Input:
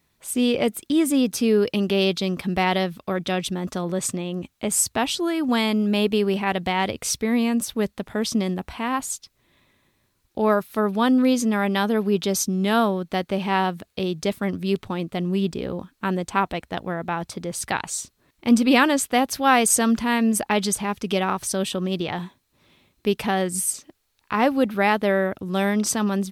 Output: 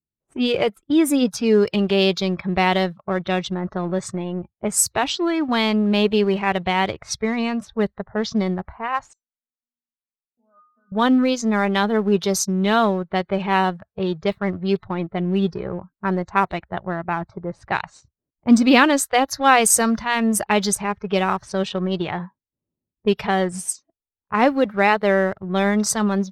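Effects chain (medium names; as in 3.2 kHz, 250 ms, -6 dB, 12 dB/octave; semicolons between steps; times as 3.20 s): 9.13–10.92 s: inharmonic resonator 240 Hz, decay 0.7 s, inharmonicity 0.002; spectral noise reduction 21 dB; in parallel at -3 dB: crossover distortion -34.5 dBFS; on the sum: level-controlled noise filter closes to 380 Hz, open at -14.5 dBFS; trim -1 dB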